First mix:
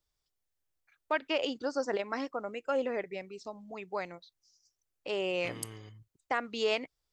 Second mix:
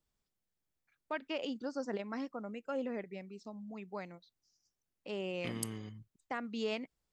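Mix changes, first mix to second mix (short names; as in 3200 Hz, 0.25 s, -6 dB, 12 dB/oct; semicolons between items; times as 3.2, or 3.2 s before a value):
first voice -8.5 dB; master: add bell 210 Hz +12.5 dB 0.76 oct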